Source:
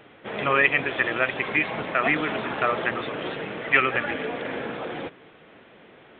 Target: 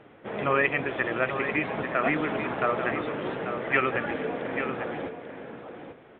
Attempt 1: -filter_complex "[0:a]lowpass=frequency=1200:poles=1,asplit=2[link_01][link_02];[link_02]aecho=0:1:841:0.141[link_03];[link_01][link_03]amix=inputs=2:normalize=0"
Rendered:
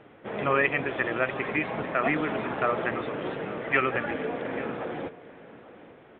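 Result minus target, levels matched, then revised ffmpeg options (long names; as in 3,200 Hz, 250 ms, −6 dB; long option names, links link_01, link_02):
echo-to-direct −8.5 dB
-filter_complex "[0:a]lowpass=frequency=1200:poles=1,asplit=2[link_01][link_02];[link_02]aecho=0:1:841:0.376[link_03];[link_01][link_03]amix=inputs=2:normalize=0"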